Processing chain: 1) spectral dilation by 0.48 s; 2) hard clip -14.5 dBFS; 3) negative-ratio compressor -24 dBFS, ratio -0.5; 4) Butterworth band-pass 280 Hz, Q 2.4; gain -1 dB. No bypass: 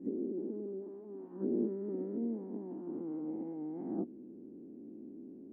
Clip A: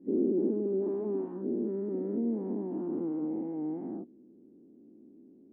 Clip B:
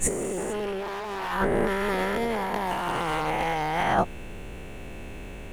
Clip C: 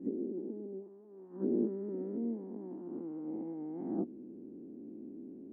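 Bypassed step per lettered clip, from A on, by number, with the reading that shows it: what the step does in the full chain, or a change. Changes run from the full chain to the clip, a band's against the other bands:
3, crest factor change -2.5 dB; 4, 1 kHz band +20.5 dB; 2, distortion -10 dB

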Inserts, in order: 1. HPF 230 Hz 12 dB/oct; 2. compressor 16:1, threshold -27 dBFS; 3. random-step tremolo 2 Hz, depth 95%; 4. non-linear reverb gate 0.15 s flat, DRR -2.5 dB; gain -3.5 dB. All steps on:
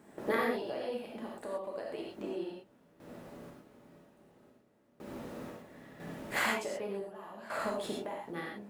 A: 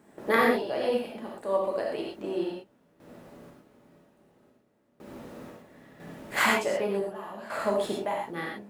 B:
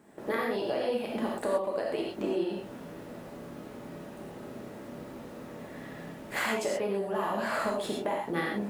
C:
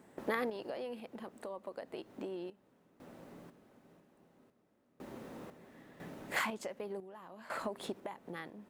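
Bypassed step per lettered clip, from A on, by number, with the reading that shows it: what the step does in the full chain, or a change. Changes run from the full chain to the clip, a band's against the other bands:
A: 2, mean gain reduction 3.5 dB; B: 3, momentary loudness spread change -6 LU; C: 4, crest factor change +3.5 dB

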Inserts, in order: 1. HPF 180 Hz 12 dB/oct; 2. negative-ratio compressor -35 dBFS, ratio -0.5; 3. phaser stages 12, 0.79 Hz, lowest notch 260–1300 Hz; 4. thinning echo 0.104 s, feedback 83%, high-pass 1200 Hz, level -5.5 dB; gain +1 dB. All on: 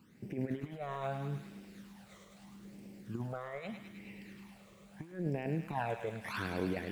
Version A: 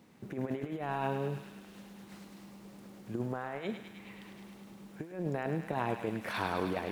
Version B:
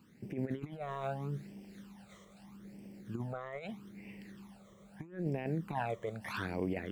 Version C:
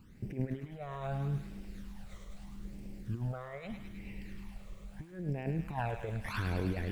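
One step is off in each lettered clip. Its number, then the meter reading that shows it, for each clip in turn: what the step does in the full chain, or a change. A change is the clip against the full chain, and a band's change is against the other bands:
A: 3, 125 Hz band -3.0 dB; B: 4, 8 kHz band -2.0 dB; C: 1, 125 Hz band +5.5 dB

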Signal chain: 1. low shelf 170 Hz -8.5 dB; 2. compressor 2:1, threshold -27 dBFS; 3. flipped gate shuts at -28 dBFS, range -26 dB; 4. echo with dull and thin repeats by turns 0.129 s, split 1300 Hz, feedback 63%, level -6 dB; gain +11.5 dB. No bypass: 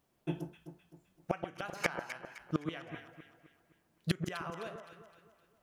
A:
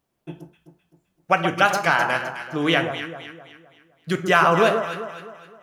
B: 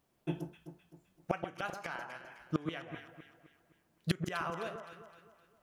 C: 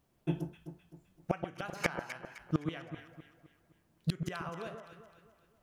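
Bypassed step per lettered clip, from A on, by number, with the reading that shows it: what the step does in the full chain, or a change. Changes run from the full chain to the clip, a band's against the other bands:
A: 3, momentary loudness spread change -2 LU; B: 2, crest factor change -4.5 dB; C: 1, 125 Hz band +3.5 dB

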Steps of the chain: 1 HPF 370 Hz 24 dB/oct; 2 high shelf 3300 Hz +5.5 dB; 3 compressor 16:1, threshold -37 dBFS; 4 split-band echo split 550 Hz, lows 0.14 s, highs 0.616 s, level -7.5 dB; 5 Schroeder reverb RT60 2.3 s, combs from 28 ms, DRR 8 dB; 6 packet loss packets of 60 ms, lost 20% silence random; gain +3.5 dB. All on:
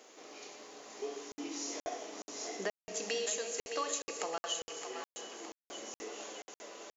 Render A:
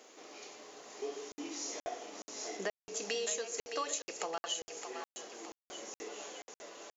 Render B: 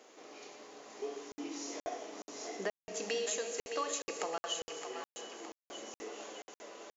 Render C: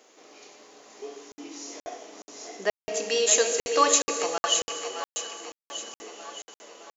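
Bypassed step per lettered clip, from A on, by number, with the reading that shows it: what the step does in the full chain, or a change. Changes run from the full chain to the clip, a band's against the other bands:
5, crest factor change +1.5 dB; 2, momentary loudness spread change +1 LU; 3, mean gain reduction 3.5 dB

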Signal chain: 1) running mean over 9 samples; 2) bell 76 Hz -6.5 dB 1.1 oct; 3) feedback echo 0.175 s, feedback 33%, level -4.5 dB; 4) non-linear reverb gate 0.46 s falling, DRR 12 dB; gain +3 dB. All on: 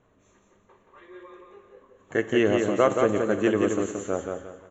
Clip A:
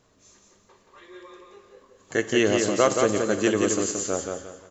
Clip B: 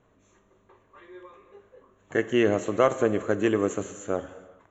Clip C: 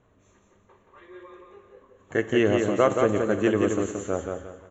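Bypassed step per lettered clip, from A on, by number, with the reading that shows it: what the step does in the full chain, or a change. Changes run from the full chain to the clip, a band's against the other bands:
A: 1, 4 kHz band +7.5 dB; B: 3, echo-to-direct -3.0 dB to -12.0 dB; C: 2, 125 Hz band +3.0 dB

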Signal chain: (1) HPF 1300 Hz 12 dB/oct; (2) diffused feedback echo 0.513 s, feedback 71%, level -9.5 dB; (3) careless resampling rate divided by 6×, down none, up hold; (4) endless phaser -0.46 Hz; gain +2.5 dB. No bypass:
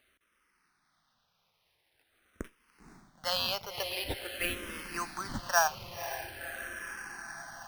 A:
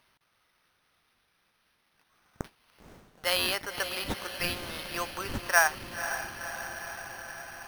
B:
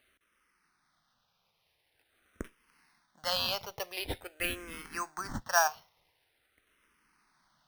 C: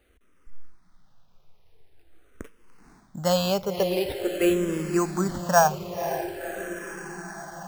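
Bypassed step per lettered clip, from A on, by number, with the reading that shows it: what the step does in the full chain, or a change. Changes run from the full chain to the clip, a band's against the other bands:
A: 4, 2 kHz band +3.0 dB; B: 2, momentary loudness spread change +5 LU; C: 1, crest factor change -4.5 dB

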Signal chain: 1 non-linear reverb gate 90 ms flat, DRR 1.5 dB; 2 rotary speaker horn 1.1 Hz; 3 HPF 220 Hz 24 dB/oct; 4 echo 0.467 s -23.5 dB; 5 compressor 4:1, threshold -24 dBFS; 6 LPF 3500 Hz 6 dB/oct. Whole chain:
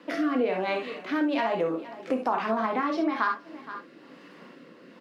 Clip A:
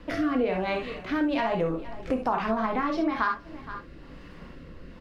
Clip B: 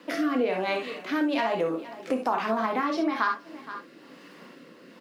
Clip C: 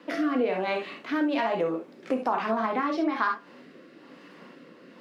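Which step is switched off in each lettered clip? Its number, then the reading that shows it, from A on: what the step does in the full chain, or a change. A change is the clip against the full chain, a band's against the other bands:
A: 3, 125 Hz band +8.5 dB; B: 6, 4 kHz band +3.0 dB; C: 4, momentary loudness spread change -5 LU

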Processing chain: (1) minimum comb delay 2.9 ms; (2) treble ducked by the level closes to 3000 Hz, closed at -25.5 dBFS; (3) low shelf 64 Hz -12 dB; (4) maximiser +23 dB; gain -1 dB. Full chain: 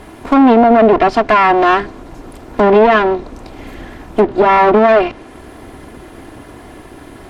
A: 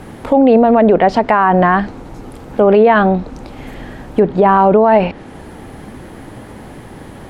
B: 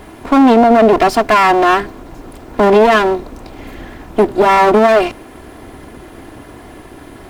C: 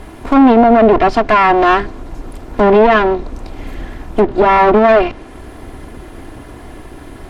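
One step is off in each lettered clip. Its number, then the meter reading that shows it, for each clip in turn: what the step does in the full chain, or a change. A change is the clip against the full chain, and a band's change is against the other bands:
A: 1, 125 Hz band +7.5 dB; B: 2, 4 kHz band +3.5 dB; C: 3, 125 Hz band +2.0 dB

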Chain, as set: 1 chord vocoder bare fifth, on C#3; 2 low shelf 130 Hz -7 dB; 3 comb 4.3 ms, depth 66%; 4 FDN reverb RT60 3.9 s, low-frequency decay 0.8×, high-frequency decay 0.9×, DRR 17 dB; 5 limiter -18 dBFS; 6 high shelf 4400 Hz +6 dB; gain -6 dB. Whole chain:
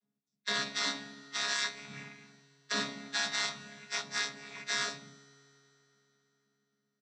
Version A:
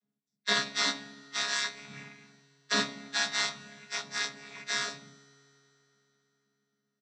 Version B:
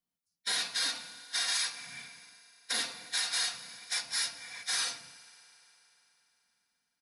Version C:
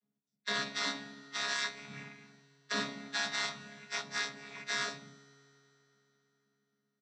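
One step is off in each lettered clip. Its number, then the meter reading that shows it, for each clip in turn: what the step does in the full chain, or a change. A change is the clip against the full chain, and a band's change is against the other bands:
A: 5, crest factor change +5.0 dB; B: 1, 250 Hz band -9.5 dB; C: 6, 8 kHz band -4.0 dB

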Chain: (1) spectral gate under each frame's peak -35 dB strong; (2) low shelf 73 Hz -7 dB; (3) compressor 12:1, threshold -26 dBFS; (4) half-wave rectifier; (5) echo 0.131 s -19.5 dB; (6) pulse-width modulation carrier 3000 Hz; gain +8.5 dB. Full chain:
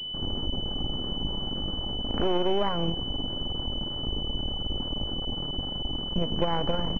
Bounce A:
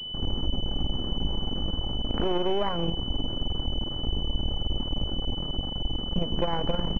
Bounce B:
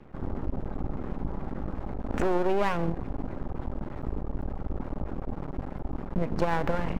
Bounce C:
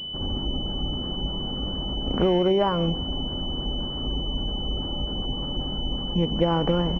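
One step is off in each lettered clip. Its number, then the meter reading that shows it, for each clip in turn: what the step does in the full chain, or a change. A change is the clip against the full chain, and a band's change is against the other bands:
2, 125 Hz band +3.0 dB; 6, 2 kHz band +6.5 dB; 4, crest factor change -1.5 dB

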